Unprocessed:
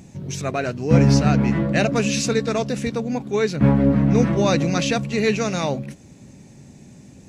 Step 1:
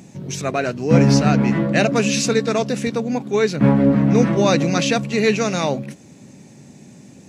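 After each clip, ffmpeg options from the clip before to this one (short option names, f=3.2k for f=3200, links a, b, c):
-af "highpass=140,volume=3dB"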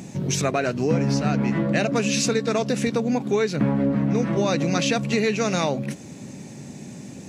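-af "acompressor=threshold=-24dB:ratio=6,volume=5dB"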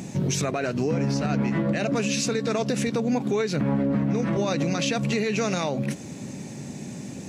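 -af "alimiter=limit=-18dB:level=0:latency=1:release=84,volume=2dB"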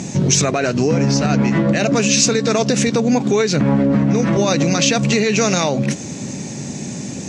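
-af "lowpass=f=6.7k:t=q:w=2,volume=8.5dB"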